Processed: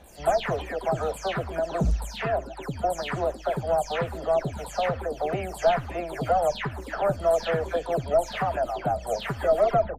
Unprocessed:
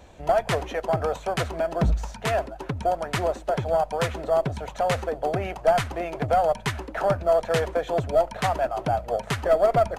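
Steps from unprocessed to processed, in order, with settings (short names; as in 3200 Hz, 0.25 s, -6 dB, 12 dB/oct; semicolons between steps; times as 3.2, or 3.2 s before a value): spectral delay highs early, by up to 0.231 s; gain -1.5 dB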